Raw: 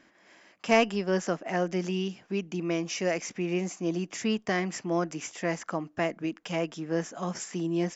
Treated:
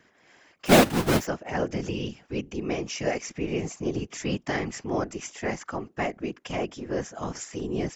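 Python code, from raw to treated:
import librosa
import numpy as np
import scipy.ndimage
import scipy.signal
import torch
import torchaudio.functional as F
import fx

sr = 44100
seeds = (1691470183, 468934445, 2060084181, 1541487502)

y = fx.halfwave_hold(x, sr, at=(0.65, 1.25), fade=0.02)
y = fx.whisperise(y, sr, seeds[0])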